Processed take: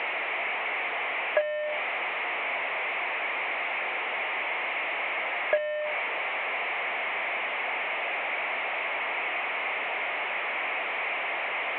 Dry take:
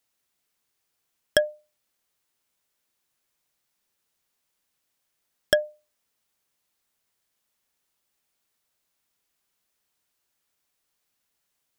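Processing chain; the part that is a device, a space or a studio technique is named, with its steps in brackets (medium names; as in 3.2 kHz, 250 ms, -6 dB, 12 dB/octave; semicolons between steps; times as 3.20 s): digital answering machine (band-pass 380–3300 Hz; one-bit delta coder 16 kbps, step -21.5 dBFS; cabinet simulation 490–3300 Hz, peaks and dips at 700 Hz +5 dB, 1.5 kHz -7 dB, 2.2 kHz +8 dB, 3.3 kHz -4 dB); trim -3 dB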